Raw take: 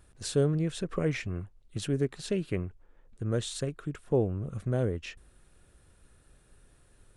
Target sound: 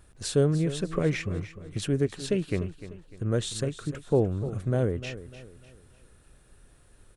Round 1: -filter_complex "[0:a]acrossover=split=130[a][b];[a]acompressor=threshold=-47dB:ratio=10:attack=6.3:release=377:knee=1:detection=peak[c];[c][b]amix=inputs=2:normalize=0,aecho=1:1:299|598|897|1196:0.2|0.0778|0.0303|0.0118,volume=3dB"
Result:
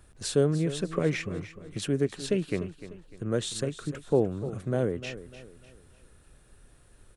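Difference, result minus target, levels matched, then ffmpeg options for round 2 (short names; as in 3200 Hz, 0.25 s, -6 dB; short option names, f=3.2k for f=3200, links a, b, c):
compressor: peak gain reduction +14.5 dB
-af "aecho=1:1:299|598|897|1196:0.2|0.0778|0.0303|0.0118,volume=3dB"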